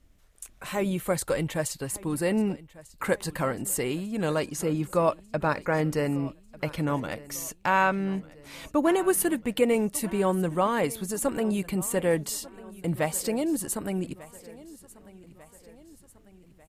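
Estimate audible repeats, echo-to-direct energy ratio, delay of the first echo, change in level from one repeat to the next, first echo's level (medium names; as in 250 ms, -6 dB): 3, -18.5 dB, 1195 ms, -5.5 dB, -20.0 dB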